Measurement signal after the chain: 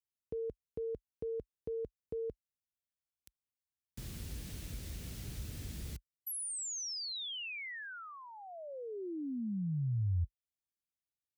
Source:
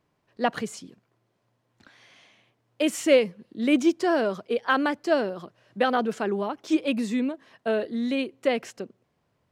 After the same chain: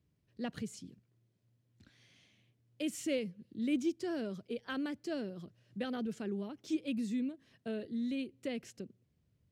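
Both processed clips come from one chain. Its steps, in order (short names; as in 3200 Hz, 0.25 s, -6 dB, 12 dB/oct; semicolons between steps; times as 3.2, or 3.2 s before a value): HPF 47 Hz 24 dB/oct; passive tone stack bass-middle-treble 10-0-1; in parallel at -1 dB: compressor, threshold -55 dBFS; on the sum: gain +7.5 dB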